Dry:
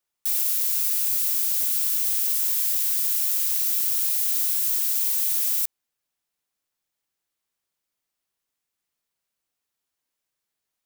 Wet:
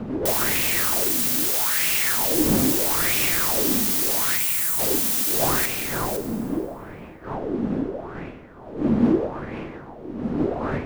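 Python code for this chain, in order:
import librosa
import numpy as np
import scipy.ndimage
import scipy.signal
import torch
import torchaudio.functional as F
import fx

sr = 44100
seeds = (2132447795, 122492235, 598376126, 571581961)

p1 = fx.halfwave_hold(x, sr)
p2 = fx.dmg_wind(p1, sr, seeds[0], corner_hz=320.0, level_db=-28.0)
p3 = fx.low_shelf(p2, sr, hz=290.0, db=-7.5)
p4 = fx.rider(p3, sr, range_db=4, speed_s=0.5)
p5 = np.clip(p4, -10.0 ** (-21.0 / 20.0), 10.0 ** (-21.0 / 20.0))
p6 = fx.ellip_bandstop(p5, sr, low_hz=160.0, high_hz=7500.0, order=3, stop_db=40, at=(4.36, 4.78), fade=0.02)
p7 = p6 + fx.echo_single(p6, sr, ms=510, db=-7.0, dry=0)
p8 = fx.rev_plate(p7, sr, seeds[1], rt60_s=2.2, hf_ratio=0.8, predelay_ms=0, drr_db=6.5)
y = fx.bell_lfo(p8, sr, hz=0.78, low_hz=220.0, high_hz=2500.0, db=15)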